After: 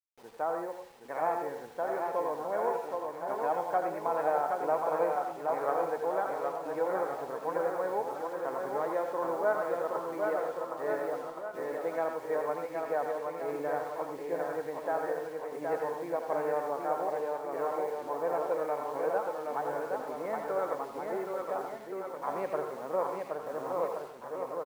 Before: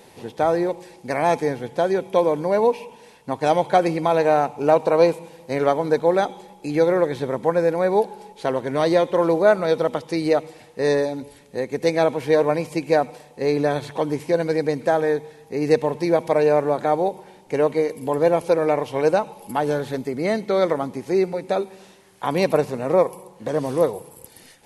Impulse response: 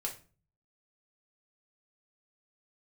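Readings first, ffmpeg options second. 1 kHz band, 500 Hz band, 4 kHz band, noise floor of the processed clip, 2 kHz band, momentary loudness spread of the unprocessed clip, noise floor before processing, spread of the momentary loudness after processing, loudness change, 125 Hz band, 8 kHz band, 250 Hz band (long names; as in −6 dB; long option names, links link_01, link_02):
−8.0 dB, −12.5 dB, below −20 dB, −45 dBFS, −11.0 dB, 10 LU, −49 dBFS, 7 LU, −12.0 dB, −23.0 dB, can't be measured, −17.5 dB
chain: -filter_complex "[0:a]lowpass=frequency=1300:width=0.5412,lowpass=frequency=1300:width=1.3066,agate=range=-33dB:threshold=-41dB:ratio=3:detection=peak,aderivative,acrusher=bits=10:mix=0:aa=0.000001,aecho=1:1:770|1424|1981|2454|2856:0.631|0.398|0.251|0.158|0.1,asplit=2[link_01][link_02];[1:a]atrim=start_sample=2205,lowshelf=frequency=500:gain=-10,adelay=83[link_03];[link_02][link_03]afir=irnorm=-1:irlink=0,volume=-4dB[link_04];[link_01][link_04]amix=inputs=2:normalize=0,volume=7.5dB"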